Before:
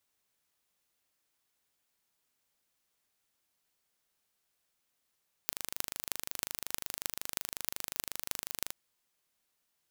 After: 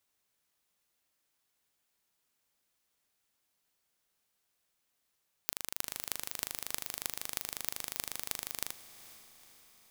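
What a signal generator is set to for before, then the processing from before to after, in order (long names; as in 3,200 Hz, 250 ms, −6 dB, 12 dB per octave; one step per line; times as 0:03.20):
impulse train 25.5 per second, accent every 8, −3.5 dBFS 3.23 s
feedback delay with all-pass diffusion 465 ms, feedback 55%, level −15 dB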